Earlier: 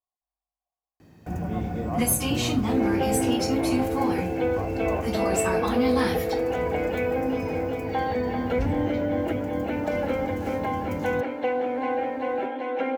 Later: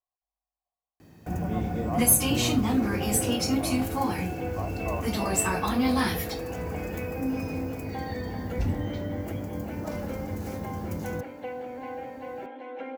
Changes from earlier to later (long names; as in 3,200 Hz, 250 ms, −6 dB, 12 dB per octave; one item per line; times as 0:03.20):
first sound: add high-shelf EQ 7,600 Hz +6.5 dB
second sound −10.5 dB